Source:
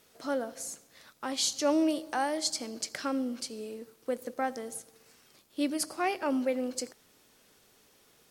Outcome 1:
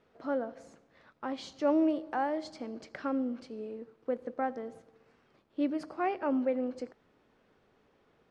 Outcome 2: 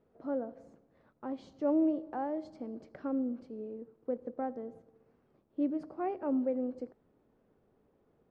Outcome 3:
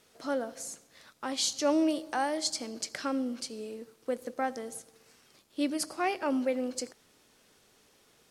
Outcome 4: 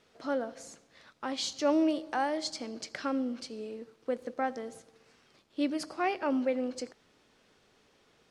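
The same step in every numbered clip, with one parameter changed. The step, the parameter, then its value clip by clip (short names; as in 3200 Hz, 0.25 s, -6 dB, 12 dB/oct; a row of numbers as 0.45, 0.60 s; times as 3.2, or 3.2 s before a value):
Bessel low-pass, frequency: 1400, 530, 11000, 3800 Hz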